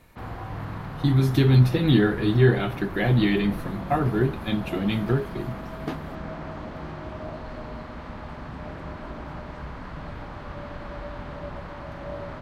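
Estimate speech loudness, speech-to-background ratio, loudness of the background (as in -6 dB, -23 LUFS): -22.5 LUFS, 14.0 dB, -36.5 LUFS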